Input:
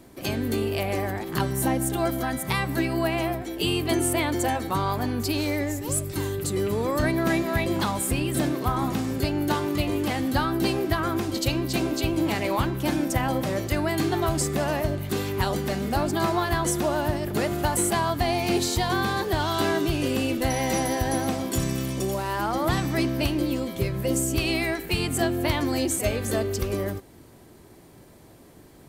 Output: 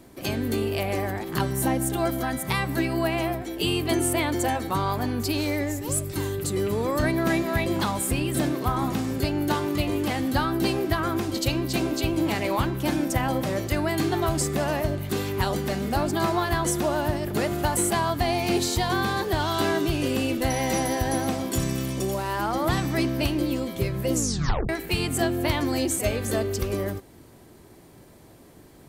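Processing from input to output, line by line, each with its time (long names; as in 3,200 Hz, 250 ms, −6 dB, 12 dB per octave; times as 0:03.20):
0:24.14: tape stop 0.55 s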